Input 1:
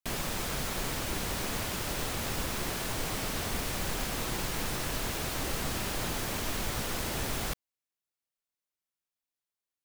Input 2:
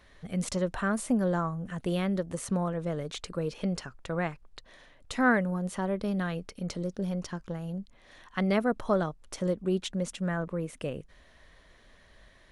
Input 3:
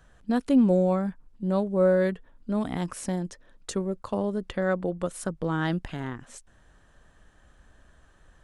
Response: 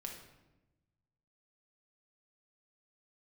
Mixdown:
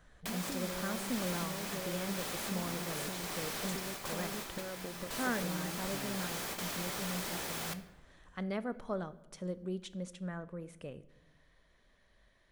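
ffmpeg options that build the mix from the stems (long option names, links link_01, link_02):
-filter_complex "[0:a]highpass=frequency=390:poles=1,adelay=200,volume=-2.5dB,asplit=2[link_01][link_02];[link_02]volume=-5.5dB[link_03];[1:a]volume=-13dB,asplit=3[link_04][link_05][link_06];[link_05]volume=-7dB[link_07];[2:a]acompressor=threshold=-26dB:ratio=6,volume=-4.5dB[link_08];[link_06]apad=whole_len=443102[link_09];[link_01][link_09]sidechaingate=range=-33dB:threshold=-58dB:ratio=16:detection=peak[link_10];[link_10][link_08]amix=inputs=2:normalize=0,acompressor=threshold=-40dB:ratio=6,volume=0dB[link_11];[3:a]atrim=start_sample=2205[link_12];[link_03][link_07]amix=inputs=2:normalize=0[link_13];[link_13][link_12]afir=irnorm=-1:irlink=0[link_14];[link_04][link_11][link_14]amix=inputs=3:normalize=0,bandreject=frequency=2800:width=29"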